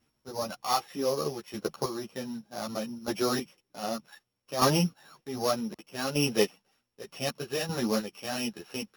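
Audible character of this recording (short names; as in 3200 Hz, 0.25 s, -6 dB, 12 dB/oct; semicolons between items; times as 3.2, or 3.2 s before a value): a buzz of ramps at a fixed pitch in blocks of 8 samples; chopped level 0.65 Hz, depth 60%, duty 20%; a shimmering, thickened sound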